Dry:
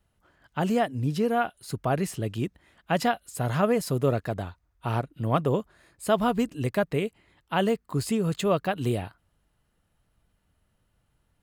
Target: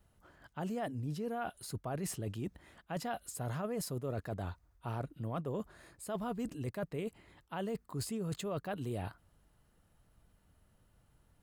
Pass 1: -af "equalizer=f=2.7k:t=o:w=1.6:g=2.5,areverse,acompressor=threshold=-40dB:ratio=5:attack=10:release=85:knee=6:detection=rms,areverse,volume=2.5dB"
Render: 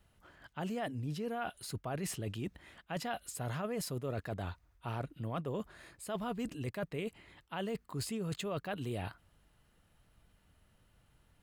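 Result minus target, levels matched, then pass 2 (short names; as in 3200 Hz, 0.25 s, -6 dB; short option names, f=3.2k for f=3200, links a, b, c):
2000 Hz band +3.0 dB
-af "equalizer=f=2.7k:t=o:w=1.6:g=-4,areverse,acompressor=threshold=-40dB:ratio=5:attack=10:release=85:knee=6:detection=rms,areverse,volume=2.5dB"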